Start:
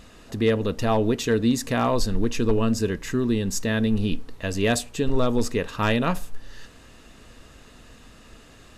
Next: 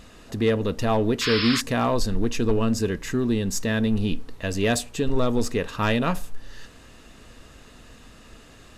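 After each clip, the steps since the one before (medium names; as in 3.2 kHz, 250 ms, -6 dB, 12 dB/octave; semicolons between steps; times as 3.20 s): in parallel at -11 dB: hard clipper -24.5 dBFS, distortion -7 dB; on the sum: painted sound noise, 1.21–1.61 s, 1–5.4 kHz -25 dBFS; trim -1.5 dB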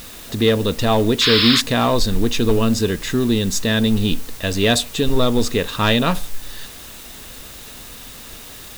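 peaking EQ 3.7 kHz +10 dB 0.44 oct; in parallel at -4 dB: word length cut 6-bit, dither triangular; on the sum: trim +1 dB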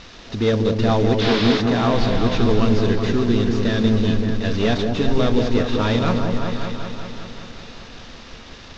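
CVSD coder 32 kbps; on a send: delay with an opening low-pass 191 ms, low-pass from 750 Hz, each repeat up 1 oct, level -3 dB; on the sum: trim -2 dB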